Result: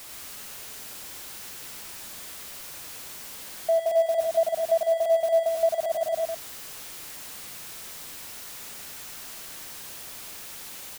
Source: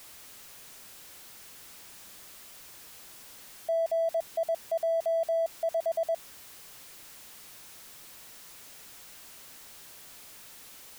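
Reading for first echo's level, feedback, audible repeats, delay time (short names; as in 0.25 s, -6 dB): -4.5 dB, no steady repeat, 2, 93 ms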